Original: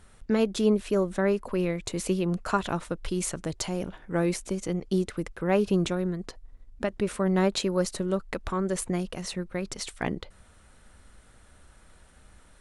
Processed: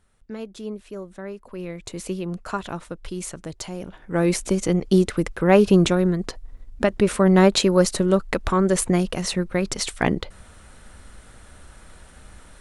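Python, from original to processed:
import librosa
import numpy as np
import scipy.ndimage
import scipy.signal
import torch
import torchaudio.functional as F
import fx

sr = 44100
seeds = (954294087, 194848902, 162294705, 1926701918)

y = fx.gain(x, sr, db=fx.line((1.38, -10.0), (1.86, -2.0), (3.81, -2.0), (4.42, 9.0)))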